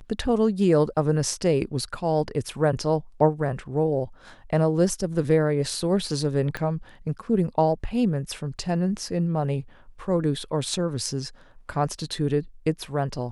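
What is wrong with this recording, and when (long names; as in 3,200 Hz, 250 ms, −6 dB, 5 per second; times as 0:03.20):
0:06.57: click −16 dBFS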